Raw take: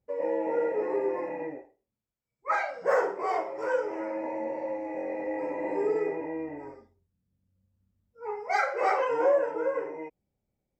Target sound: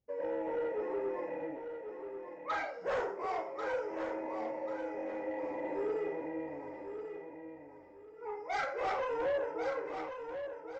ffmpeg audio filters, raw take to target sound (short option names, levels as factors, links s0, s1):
-af "aresample=16000,asoftclip=type=tanh:threshold=0.0708,aresample=44100,aecho=1:1:1090|2180|3270:0.398|0.107|0.029,volume=0.531"